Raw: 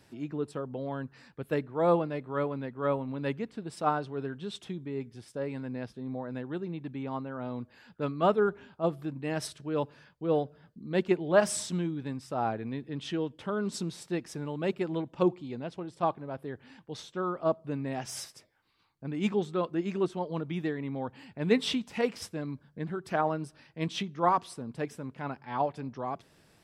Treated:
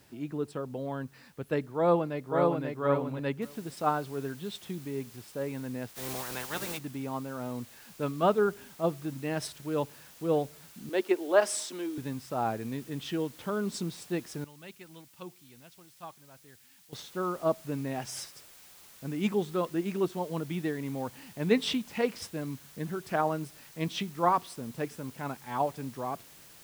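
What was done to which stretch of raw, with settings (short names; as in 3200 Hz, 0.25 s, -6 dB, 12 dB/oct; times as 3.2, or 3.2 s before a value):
1.77–2.65 echo throw 0.54 s, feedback 10%, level -2.5 dB
3.42 noise floor step -67 dB -54 dB
5.88–6.77 spectral limiter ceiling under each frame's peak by 25 dB
10.89–11.98 steep high-pass 270 Hz
14.44–16.93 passive tone stack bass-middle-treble 5-5-5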